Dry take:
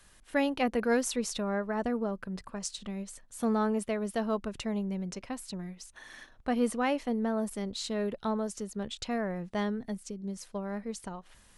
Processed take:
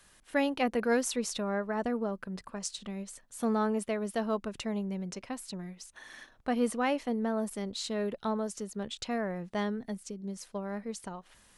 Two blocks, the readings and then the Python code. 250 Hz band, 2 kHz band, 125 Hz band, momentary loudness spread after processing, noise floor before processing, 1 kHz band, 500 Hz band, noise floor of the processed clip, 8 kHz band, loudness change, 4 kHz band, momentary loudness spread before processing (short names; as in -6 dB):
-1.0 dB, 0.0 dB, -1.5 dB, 13 LU, -59 dBFS, 0.0 dB, -0.5 dB, -62 dBFS, 0.0 dB, -0.5 dB, 0.0 dB, 12 LU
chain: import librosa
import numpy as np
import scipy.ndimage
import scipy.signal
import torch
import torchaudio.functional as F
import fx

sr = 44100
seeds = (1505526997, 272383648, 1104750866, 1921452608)

y = fx.low_shelf(x, sr, hz=92.0, db=-8.0)